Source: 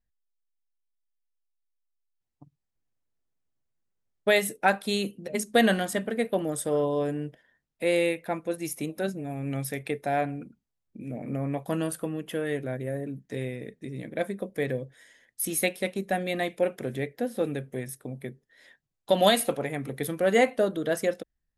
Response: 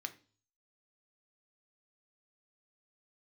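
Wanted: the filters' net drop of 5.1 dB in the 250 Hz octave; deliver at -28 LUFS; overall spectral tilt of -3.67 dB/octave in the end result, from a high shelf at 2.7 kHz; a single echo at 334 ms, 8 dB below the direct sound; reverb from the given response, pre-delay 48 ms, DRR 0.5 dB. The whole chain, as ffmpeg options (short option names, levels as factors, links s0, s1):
-filter_complex "[0:a]equalizer=f=250:t=o:g=-7,highshelf=f=2700:g=3.5,aecho=1:1:334:0.398,asplit=2[s0][s1];[1:a]atrim=start_sample=2205,adelay=48[s2];[s1][s2]afir=irnorm=-1:irlink=0,volume=1.12[s3];[s0][s3]amix=inputs=2:normalize=0,volume=0.841"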